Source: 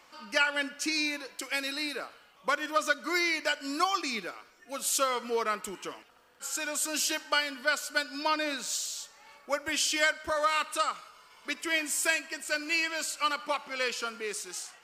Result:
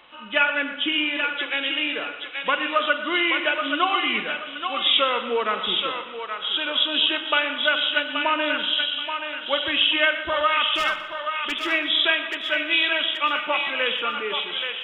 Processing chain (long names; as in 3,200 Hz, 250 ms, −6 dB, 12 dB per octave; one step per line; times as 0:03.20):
hearing-aid frequency compression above 2,500 Hz 4 to 1
0:10.75–0:11.52: gain into a clipping stage and back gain 28.5 dB
feedback echo with a high-pass in the loop 828 ms, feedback 35%, high-pass 850 Hz, level −4.5 dB
spring reverb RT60 1.2 s, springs 41/46 ms, chirp 55 ms, DRR 9.5 dB
feedback echo with a swinging delay time 121 ms, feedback 33%, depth 51 cents, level −15 dB
level +5.5 dB